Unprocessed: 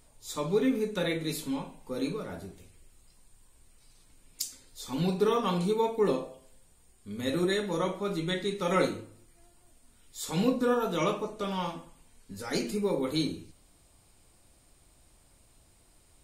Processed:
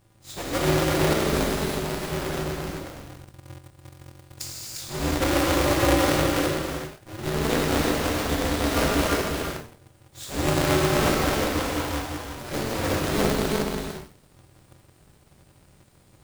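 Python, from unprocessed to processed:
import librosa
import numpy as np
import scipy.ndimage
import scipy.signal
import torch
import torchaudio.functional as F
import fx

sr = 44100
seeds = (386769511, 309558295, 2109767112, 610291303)

p1 = fx.halfwave_hold(x, sr)
p2 = fx.notch(p1, sr, hz=1000.0, q=6.0)
p3 = p2 + fx.echo_single(p2, sr, ms=353, db=-4.0, dry=0)
p4 = fx.rev_gated(p3, sr, seeds[0], gate_ms=410, shape='flat', drr_db=-5.5)
p5 = fx.quant_dither(p4, sr, seeds[1], bits=6, dither='none')
p6 = p4 + F.gain(torch.from_numpy(p5), -9.0).numpy()
p7 = p6 * np.sign(np.sin(2.0 * np.pi * 110.0 * np.arange(len(p6)) / sr))
y = F.gain(torch.from_numpy(p7), -8.5).numpy()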